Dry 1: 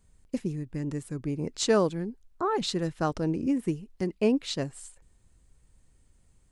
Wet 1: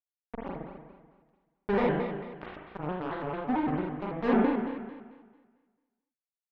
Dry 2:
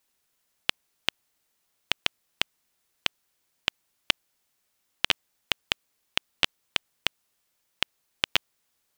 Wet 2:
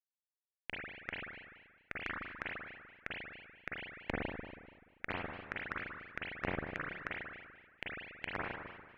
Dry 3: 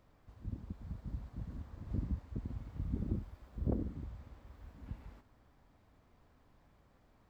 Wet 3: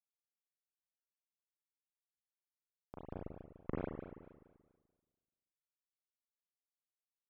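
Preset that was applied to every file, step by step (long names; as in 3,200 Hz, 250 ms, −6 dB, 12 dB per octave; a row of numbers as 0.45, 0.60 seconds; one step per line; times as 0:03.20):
noise reduction from a noise print of the clip's start 27 dB
treble cut that deepens with the level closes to 510 Hz, closed at −28 dBFS
dynamic equaliser 1,700 Hz, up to +5 dB, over −51 dBFS, Q 2.2
dead-zone distortion −27 dBFS
background noise pink −56 dBFS
fuzz pedal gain 30 dB, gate −34 dBFS
high-frequency loss of the air 330 metres
spring reverb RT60 1.5 s, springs 36/48 ms, chirp 45 ms, DRR −5.5 dB
pitch modulation by a square or saw wave square 4.5 Hz, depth 160 cents
level −8 dB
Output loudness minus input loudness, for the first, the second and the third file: −1.5, −12.5, −4.0 LU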